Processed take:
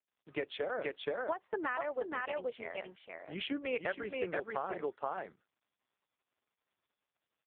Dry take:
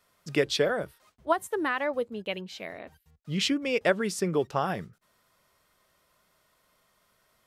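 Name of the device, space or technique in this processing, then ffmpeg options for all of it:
voicemail: -filter_complex "[0:a]asettb=1/sr,asplit=3[a][b][c];[a]atrim=end=1.724[d];[b]atrim=start=1.72:end=2.32,asetpts=PTS-STARTPTS,afade=t=in:d=0.004:c=qsin,afade=t=out:st=0.596:d=0.004:c=qsin,highpass=f=41:p=1[e];[c]atrim=start=2.316[f];[d][e]acrossfade=d=0.004:c1=hsin:c2=qsin[g];[g][f]acrossfade=d=0.004:c1=qsin:c2=hsin,agate=range=-28dB:threshold=-55dB:ratio=16:detection=peak,asplit=3[h][i][j];[h]afade=t=out:st=3.53:d=0.02[k];[i]equalizer=f=1.6k:t=o:w=0.4:g=5.5,afade=t=in:st=3.53:d=0.02,afade=t=out:st=4.41:d=0.02[l];[j]afade=t=in:st=4.41:d=0.02[m];[k][l][m]amix=inputs=3:normalize=0,highpass=400,lowpass=2.6k,aecho=1:1:476:0.668,acompressor=threshold=-28dB:ratio=12,volume=-2dB" -ar 8000 -c:a libopencore_amrnb -b:a 4750

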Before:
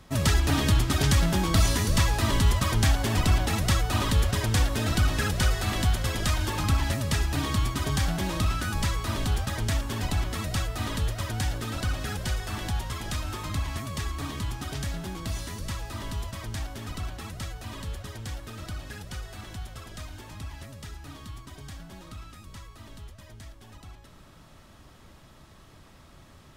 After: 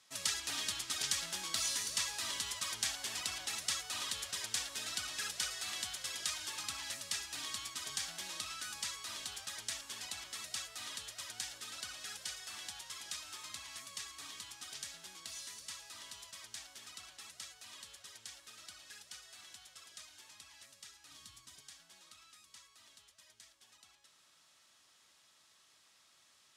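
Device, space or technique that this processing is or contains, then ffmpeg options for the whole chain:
piezo pickup straight into a mixer: -filter_complex "[0:a]lowpass=7.4k,aderivative,asettb=1/sr,asplit=3[a][b][c];[a]atrim=end=21.114[d];[b]atrim=start=21.11:end=21.61,asetpts=PTS-STARTPTS,afade=t=in:d=0.004:c=qsin,afade=t=out:st=0.496:d=0.004:c=qsin,bass=f=250:g=11,treble=f=4k:g=3[e];[c]atrim=start=21.606[f];[d][e]acrossfade=d=0.004:c1=hsin:c2=qsin[g];[g][f]acrossfade=d=0.004:c1=qsin:c2=hsin"

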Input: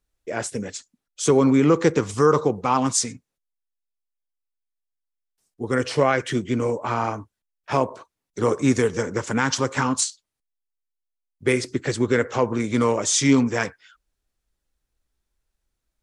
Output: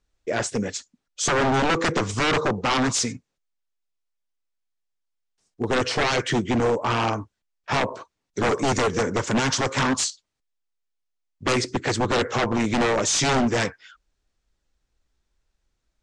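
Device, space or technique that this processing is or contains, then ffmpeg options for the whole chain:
synthesiser wavefolder: -af "aeval=exprs='0.106*(abs(mod(val(0)/0.106+3,4)-2)-1)':c=same,lowpass=f=7.6k:w=0.5412,lowpass=f=7.6k:w=1.3066,volume=4dB"

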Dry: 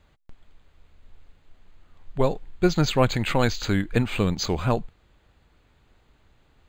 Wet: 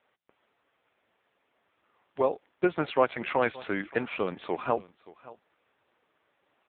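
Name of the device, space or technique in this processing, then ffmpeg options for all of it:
satellite phone: -af "highpass=400,lowpass=3.3k,aecho=1:1:573:0.1" -ar 8000 -c:a libopencore_amrnb -b:a 5900

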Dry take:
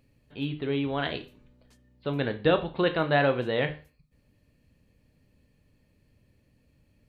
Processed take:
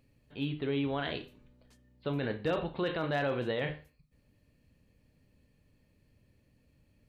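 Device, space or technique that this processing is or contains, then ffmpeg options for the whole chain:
clipper into limiter: -filter_complex "[0:a]asettb=1/sr,asplit=3[a][b][c];[a]atrim=end=2.194[d];[b]atrim=start=2.19:end=2.73,asetpts=PTS-STARTPTS,afade=t=in:d=0.004:c=qsin,afade=t=out:st=0.536:d=0.004:c=qsin,bandreject=f=3.4k:w=9.6[e];[c]atrim=start=2.726[f];[d][e]acrossfade=d=0.004:c1=hsin:c2=qsin[g];[g][f]acrossfade=d=0.004:c1=qsin:c2=hsin,asoftclip=type=hard:threshold=-15dB,alimiter=limit=-21.5dB:level=0:latency=1:release=12,volume=-2.5dB"

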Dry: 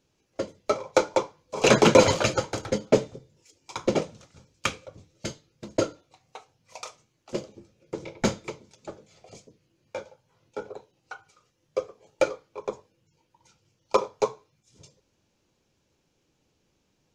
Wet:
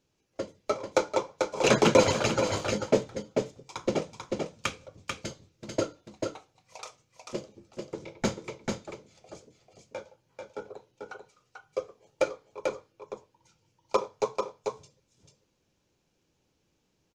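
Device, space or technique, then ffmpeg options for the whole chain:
ducked delay: -filter_complex "[0:a]asplit=3[a][b][c];[b]adelay=441,volume=-4dB[d];[c]apad=whole_len=775324[e];[d][e]sidechaincompress=threshold=-23dB:ratio=8:attack=16:release=336[f];[a][f]amix=inputs=2:normalize=0,asettb=1/sr,asplit=3[g][h][i];[g]atrim=end=2.454[j];[h]atrim=start=2.45:end=3.01,asetpts=PTS-STARTPTS,afade=t=in:d=0.004:c=qsin,afade=t=out:st=0.556:d=0.004:c=qsin,asplit=2[k][l];[l]adelay=20,volume=-9.5dB[m];[k][m]amix=inputs=2:normalize=0,atrim=end_sample=24696[n];[i]atrim=start=3.006[o];[j][n]acrossfade=d=0.004:c1=hsin:c2=qsin[p];[p][o]acrossfade=d=0.004:c1=qsin:c2=hsin,volume=-4dB"

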